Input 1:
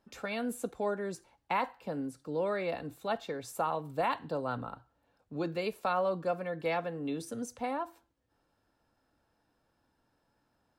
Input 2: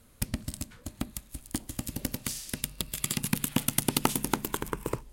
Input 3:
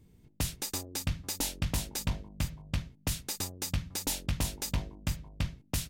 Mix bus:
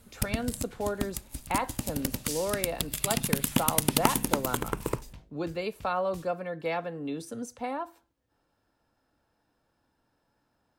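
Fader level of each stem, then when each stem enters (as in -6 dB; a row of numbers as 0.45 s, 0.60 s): +1.0 dB, +1.5 dB, -17.5 dB; 0.00 s, 0.00 s, 0.40 s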